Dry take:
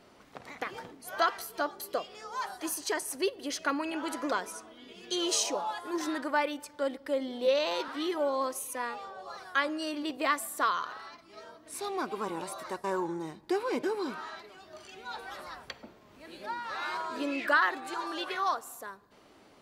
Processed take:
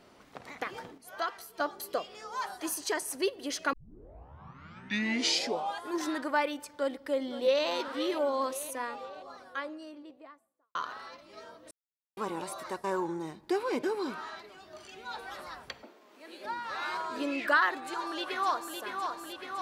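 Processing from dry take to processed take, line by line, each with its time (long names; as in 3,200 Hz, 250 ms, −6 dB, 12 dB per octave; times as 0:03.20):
0:00.98–0:01.60: clip gain −6.5 dB
0:03.73: tape start 2.10 s
0:06.73–0:07.66: delay throw 520 ms, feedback 70%, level −12.5 dB
0:08.42–0:10.75: fade out and dull
0:11.71–0:12.17: silence
0:15.83–0:16.45: high-pass filter 270 Hz 24 dB per octave
0:17.76–0:18.76: delay throw 560 ms, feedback 80%, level −5.5 dB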